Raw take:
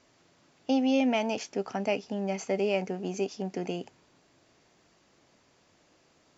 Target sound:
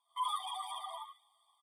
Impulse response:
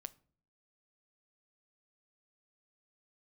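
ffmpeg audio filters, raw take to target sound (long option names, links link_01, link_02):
-filter_complex "[0:a]afftfilt=real='re':imag='-im':win_size=4096:overlap=0.75,lowpass=frequency=3400:width=0.5412,lowpass=frequency=3400:width=1.3066,bandreject=frequency=60:width_type=h:width=6,bandreject=frequency=120:width_type=h:width=6,bandreject=frequency=180:width_type=h:width=6,bandreject=frequency=240:width_type=h:width=6,bandreject=frequency=300:width_type=h:width=6,bandreject=frequency=360:width_type=h:width=6,bandreject=frequency=420:width_type=h:width=6,bandreject=frequency=480:width_type=h:width=6,dynaudnorm=framelen=190:gausssize=5:maxgain=7dB,asplit=6[link_01][link_02][link_03][link_04][link_05][link_06];[link_02]adelay=280,afreqshift=55,volume=-5dB[link_07];[link_03]adelay=560,afreqshift=110,volume=-13.2dB[link_08];[link_04]adelay=840,afreqshift=165,volume=-21.4dB[link_09];[link_05]adelay=1120,afreqshift=220,volume=-29.5dB[link_10];[link_06]adelay=1400,afreqshift=275,volume=-37.7dB[link_11];[link_01][link_07][link_08][link_09][link_10][link_11]amix=inputs=6:normalize=0,asoftclip=type=tanh:threshold=-26dB,flanger=delay=4.6:depth=1.5:regen=19:speed=1:shape=sinusoidal,asplit=3[link_12][link_13][link_14];[link_12]bandpass=frequency=300:width_type=q:width=8,volume=0dB[link_15];[link_13]bandpass=frequency=870:width_type=q:width=8,volume=-6dB[link_16];[link_14]bandpass=frequency=2240:width_type=q:width=8,volume=-9dB[link_17];[link_15][link_16][link_17]amix=inputs=3:normalize=0,asetrate=173313,aresample=44100,afftfilt=real='re*eq(mod(floor(b*sr/1024/620),2),1)':imag='im*eq(mod(floor(b*sr/1024/620),2),1)':win_size=1024:overlap=0.75,volume=8dB"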